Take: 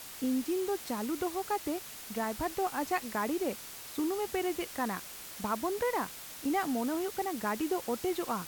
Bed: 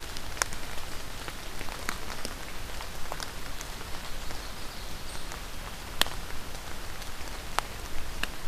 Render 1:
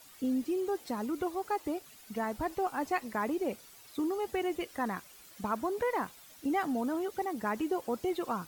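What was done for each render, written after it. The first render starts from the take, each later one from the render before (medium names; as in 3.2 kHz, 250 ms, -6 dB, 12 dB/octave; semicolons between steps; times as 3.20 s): noise reduction 12 dB, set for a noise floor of -46 dBFS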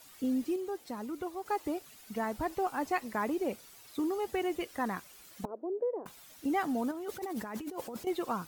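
0.56–1.46 s: gain -4.5 dB; 5.45–6.06 s: Butterworth band-pass 450 Hz, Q 1.7; 6.91–8.07 s: compressor with a negative ratio -39 dBFS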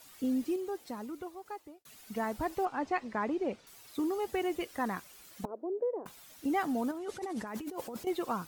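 0.85–1.85 s: fade out; 2.65–3.67 s: distance through air 120 m; 6.98–7.47 s: low-pass 10 kHz 24 dB/octave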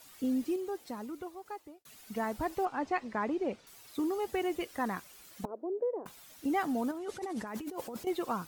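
no audible change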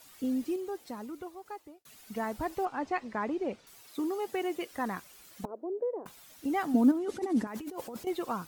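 3.81–4.71 s: high-pass 160 Hz; 6.74–7.47 s: peaking EQ 270 Hz +14 dB 0.8 oct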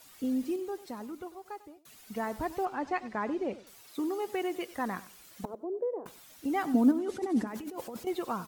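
feedback delay 97 ms, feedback 23%, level -17 dB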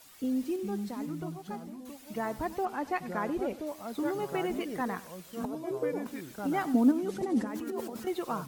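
ever faster or slower copies 355 ms, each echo -4 st, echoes 2, each echo -6 dB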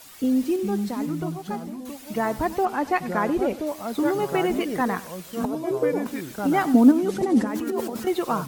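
trim +9 dB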